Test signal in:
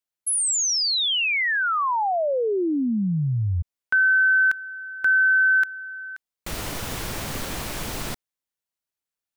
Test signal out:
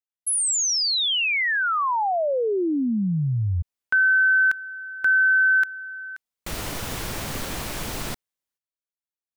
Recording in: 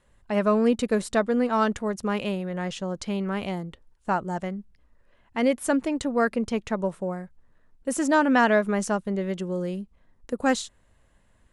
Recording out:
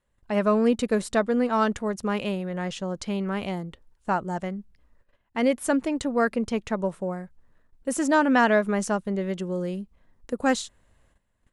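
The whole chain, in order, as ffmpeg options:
-af "agate=range=-12dB:threshold=-55dB:ratio=16:release=262:detection=rms"

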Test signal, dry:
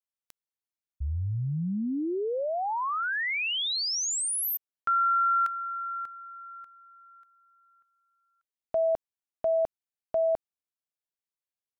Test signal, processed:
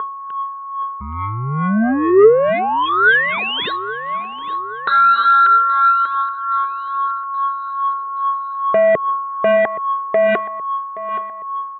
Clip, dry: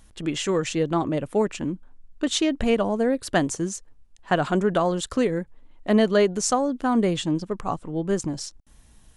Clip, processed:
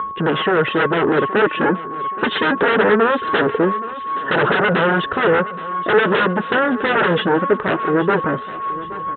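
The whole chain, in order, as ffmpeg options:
-filter_complex "[0:a]aeval=exprs='val(0)+0.0141*sin(2*PI*1100*n/s)':c=same,aphaser=in_gain=1:out_gain=1:delay=5:decay=0.53:speed=0.22:type=triangular,aresample=8000,aeval=exprs='0.447*sin(PI/2*7.94*val(0)/0.447)':c=same,aresample=44100,dynaudnorm=f=270:g=11:m=11.5dB,highpass=190,equalizer=f=280:t=q:w=4:g=-5,equalizer=f=430:t=q:w=4:g=8,equalizer=f=720:t=q:w=4:g=-6,equalizer=f=1.1k:t=q:w=4:g=-4,equalizer=f=1.5k:t=q:w=4:g=5,equalizer=f=2.3k:t=q:w=4:g=-9,lowpass=f=2.7k:w=0.5412,lowpass=f=2.7k:w=1.3066,asplit=2[a][b];[b]aecho=0:1:823|1646|2469|3292:0.15|0.0733|0.0359|0.0176[c];[a][c]amix=inputs=2:normalize=0,volume=-5dB"

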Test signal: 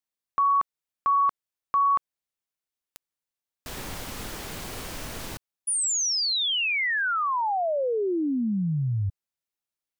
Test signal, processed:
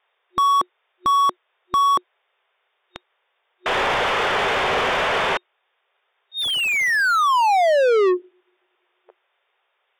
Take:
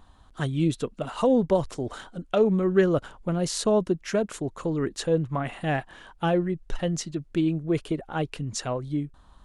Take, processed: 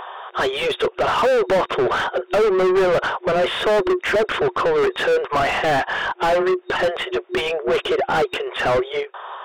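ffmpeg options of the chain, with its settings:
-filter_complex "[0:a]afftfilt=real='re*between(b*sr/4096,360,3700)':imag='im*between(b*sr/4096,360,3700)':win_size=4096:overlap=0.75,asplit=2[a][b];[b]highpass=f=720:p=1,volume=39dB,asoftclip=type=tanh:threshold=-9.5dB[c];[a][c]amix=inputs=2:normalize=0,lowpass=f=1.5k:p=1,volume=-6dB"

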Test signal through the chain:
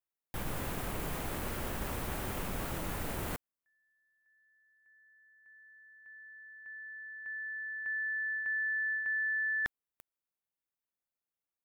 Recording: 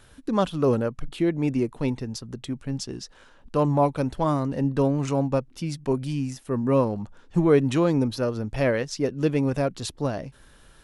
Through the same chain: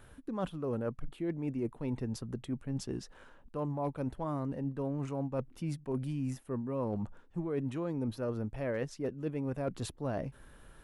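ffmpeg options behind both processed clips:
-af "equalizer=f=5.1k:t=o:w=1.7:g=-11,areverse,acompressor=threshold=-30dB:ratio=10,areverse,aeval=exprs='clip(val(0),-1,0.0531)':c=same,volume=-1.5dB"

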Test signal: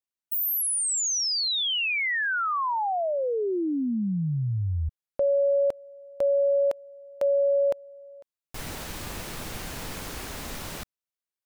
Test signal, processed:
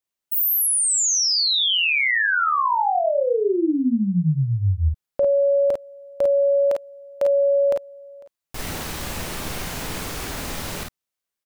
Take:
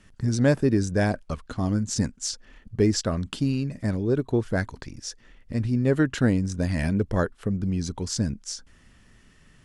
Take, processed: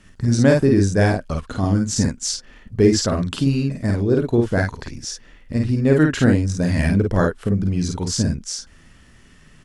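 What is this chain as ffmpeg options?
-af "aecho=1:1:39|51:0.335|0.668,volume=4.5dB"

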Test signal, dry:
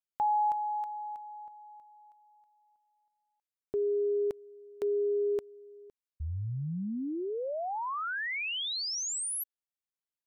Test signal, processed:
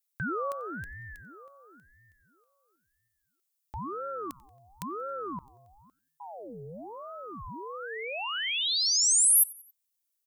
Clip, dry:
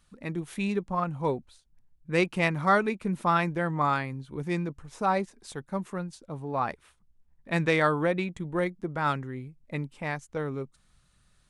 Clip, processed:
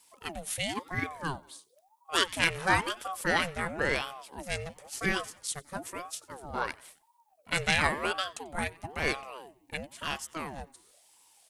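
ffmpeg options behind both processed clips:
-filter_complex "[0:a]asplit=4[a][b][c][d];[b]adelay=91,afreqshift=130,volume=-23.5dB[e];[c]adelay=182,afreqshift=260,volume=-30.2dB[f];[d]adelay=273,afreqshift=390,volume=-37dB[g];[a][e][f][g]amix=inputs=4:normalize=0,crystalizer=i=9.5:c=0,aeval=exprs='val(0)*sin(2*PI*620*n/s+620*0.55/0.98*sin(2*PI*0.98*n/s))':c=same,volume=-5.5dB"

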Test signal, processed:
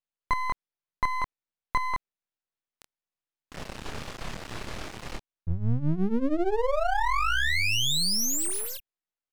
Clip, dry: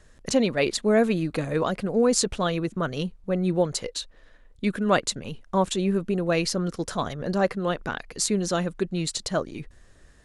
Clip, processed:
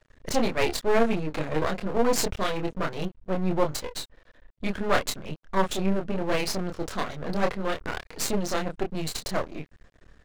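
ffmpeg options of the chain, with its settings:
-filter_complex "[0:a]adynamicsmooth=sensitivity=6:basefreq=4.5k,asplit=2[a][b];[b]adelay=26,volume=-4dB[c];[a][c]amix=inputs=2:normalize=0,aeval=exprs='max(val(0),0)':c=same,volume=1.5dB"

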